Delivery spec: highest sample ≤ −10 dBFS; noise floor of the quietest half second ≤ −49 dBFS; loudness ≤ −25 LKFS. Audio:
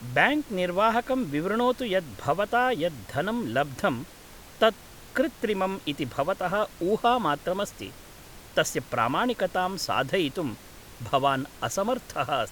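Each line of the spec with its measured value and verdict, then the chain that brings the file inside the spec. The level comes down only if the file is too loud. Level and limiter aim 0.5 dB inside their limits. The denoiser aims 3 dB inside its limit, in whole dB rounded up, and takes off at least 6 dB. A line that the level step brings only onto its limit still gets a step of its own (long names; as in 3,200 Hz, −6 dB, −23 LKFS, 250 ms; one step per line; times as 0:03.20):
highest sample −6.0 dBFS: out of spec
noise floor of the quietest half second −47 dBFS: out of spec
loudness −27.0 LKFS: in spec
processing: broadband denoise 6 dB, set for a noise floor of −47 dBFS
brickwall limiter −10.5 dBFS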